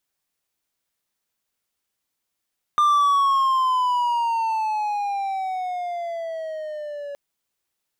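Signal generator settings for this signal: gliding synth tone triangle, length 4.37 s, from 1200 Hz, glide -13 st, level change -16 dB, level -12 dB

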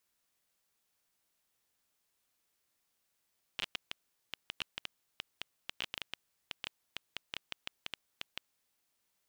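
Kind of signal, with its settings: random clicks 8.3/s -19.5 dBFS 4.85 s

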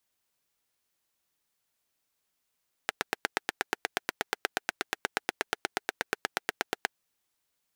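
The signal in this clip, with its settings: single-cylinder engine model, steady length 4.08 s, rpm 1000, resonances 430/760/1500 Hz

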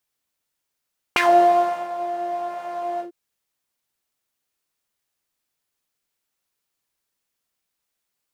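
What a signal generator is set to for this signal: synth patch with pulse-width modulation F4, detune 23 cents, sub -21 dB, noise -0.5 dB, filter bandpass, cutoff 330 Hz, Q 3.8, filter envelope 3 oct, filter decay 0.13 s, filter sustain 35%, attack 1.1 ms, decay 0.72 s, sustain -15.5 dB, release 0.11 s, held 1.84 s, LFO 1.2 Hz, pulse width 19%, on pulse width 12%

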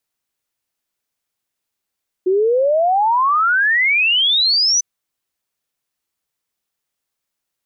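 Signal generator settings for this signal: log sweep 360 Hz -> 6100 Hz 2.55 s -12 dBFS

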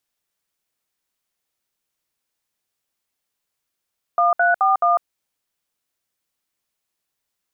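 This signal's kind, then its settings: DTMF "1341", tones 0.15 s, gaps 64 ms, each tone -16 dBFS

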